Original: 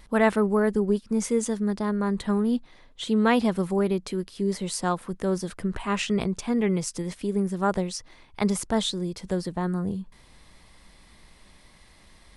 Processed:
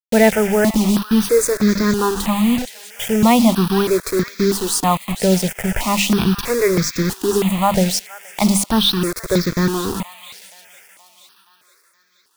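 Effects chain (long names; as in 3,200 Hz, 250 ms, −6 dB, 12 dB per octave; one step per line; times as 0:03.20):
parametric band 2,300 Hz +5 dB 0.38 octaves
mains-hum notches 50/100/150/200/250/300 Hz
in parallel at −1 dB: brickwall limiter −18.5 dBFS, peak gain reduction 11.5 dB
on the sum: bit reduction 5 bits
on a send: delay with a high-pass on its return 473 ms, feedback 55%, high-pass 1,400 Hz, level −12 dB
on the sum: step-sequenced phaser 3.1 Hz 310–2,900 Hz
level +8 dB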